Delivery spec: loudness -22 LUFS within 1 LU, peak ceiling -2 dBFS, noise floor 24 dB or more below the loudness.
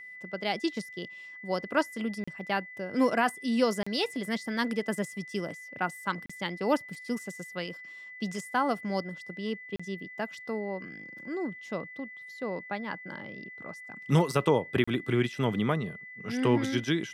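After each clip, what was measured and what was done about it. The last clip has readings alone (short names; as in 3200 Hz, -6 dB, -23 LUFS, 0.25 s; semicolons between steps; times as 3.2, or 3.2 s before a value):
dropouts 5; longest dropout 35 ms; steady tone 2000 Hz; tone level -43 dBFS; loudness -31.5 LUFS; peak -12.0 dBFS; loudness target -22.0 LUFS
-> interpolate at 2.24/3.83/6.26/9.76/14.84, 35 ms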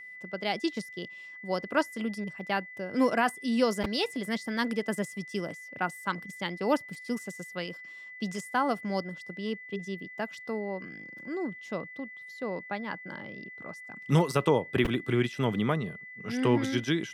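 dropouts 0; steady tone 2000 Hz; tone level -43 dBFS
-> notch 2000 Hz, Q 30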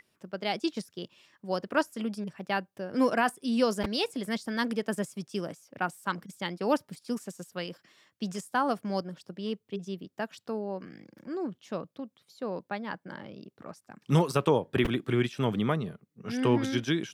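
steady tone none; loudness -31.5 LUFS; peak -12.0 dBFS; loudness target -22.0 LUFS
-> gain +9.5 dB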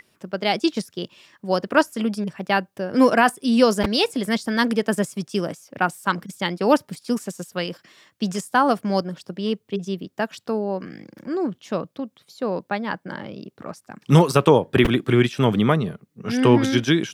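loudness -22.0 LUFS; peak -2.5 dBFS; noise floor -68 dBFS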